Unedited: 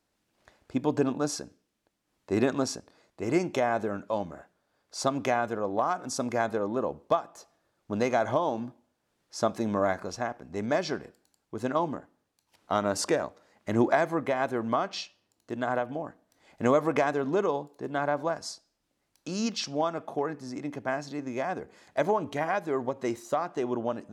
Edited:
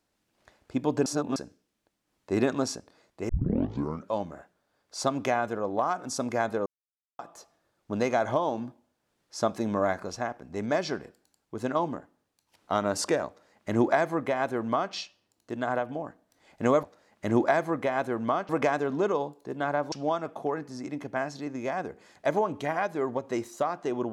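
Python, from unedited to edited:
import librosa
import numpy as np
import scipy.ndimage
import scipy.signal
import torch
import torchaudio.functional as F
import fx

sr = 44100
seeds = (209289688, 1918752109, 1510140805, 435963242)

y = fx.edit(x, sr, fx.reverse_span(start_s=1.06, length_s=0.3),
    fx.tape_start(start_s=3.29, length_s=0.8),
    fx.silence(start_s=6.66, length_s=0.53),
    fx.duplicate(start_s=13.27, length_s=1.66, to_s=16.83),
    fx.cut(start_s=18.26, length_s=1.38), tone=tone)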